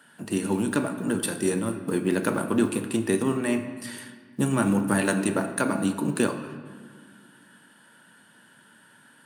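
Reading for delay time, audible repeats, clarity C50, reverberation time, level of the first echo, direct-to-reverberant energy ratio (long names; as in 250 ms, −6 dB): no echo audible, no echo audible, 9.5 dB, 1.7 s, no echo audible, 7.5 dB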